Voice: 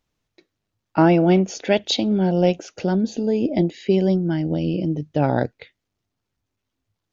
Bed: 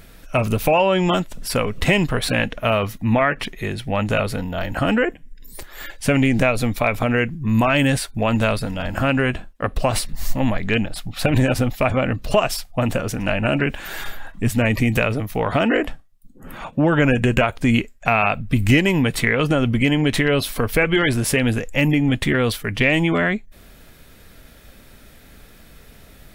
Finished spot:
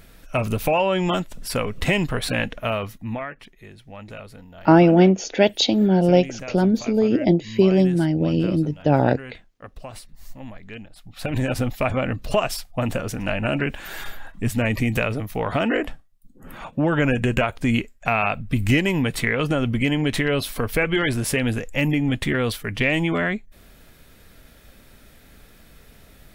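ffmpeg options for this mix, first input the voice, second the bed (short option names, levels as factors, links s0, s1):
-filter_complex "[0:a]adelay=3700,volume=1.26[s0];[1:a]volume=3.55,afade=t=out:st=2.48:d=0.9:silence=0.188365,afade=t=in:st=10.96:d=0.68:silence=0.188365[s1];[s0][s1]amix=inputs=2:normalize=0"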